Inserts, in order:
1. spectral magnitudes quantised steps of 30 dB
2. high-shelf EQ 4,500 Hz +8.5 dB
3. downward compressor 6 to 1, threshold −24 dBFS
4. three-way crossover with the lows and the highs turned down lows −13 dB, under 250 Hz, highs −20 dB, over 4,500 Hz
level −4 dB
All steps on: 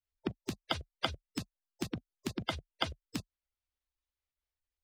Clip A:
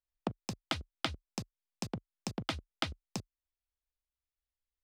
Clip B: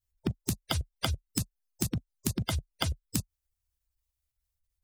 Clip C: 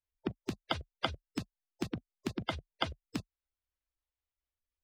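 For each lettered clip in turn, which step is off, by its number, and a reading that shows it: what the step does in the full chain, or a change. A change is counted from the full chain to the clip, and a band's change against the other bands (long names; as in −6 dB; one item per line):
1, 8 kHz band +4.0 dB
4, change in crest factor −4.5 dB
2, 8 kHz band −5.5 dB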